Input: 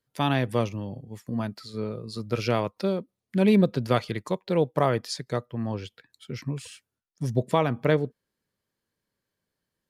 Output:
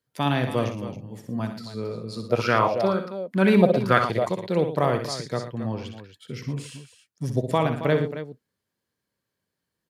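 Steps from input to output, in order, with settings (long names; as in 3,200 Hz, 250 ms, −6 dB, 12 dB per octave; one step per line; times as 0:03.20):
high-pass filter 57 Hz
multi-tap delay 63/114/272 ms −8/−12.5/−12 dB
0:02.29–0:04.29: auto-filter bell 2.1 Hz 590–1,600 Hz +16 dB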